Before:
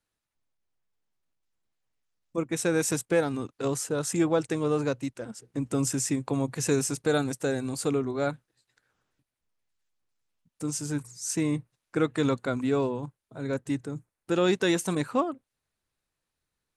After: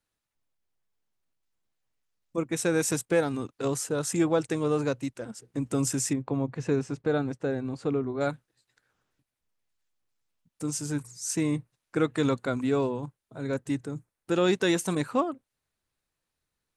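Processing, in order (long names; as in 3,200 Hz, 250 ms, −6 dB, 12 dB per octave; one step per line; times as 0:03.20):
0:06.13–0:08.21: head-to-tape spacing loss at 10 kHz 27 dB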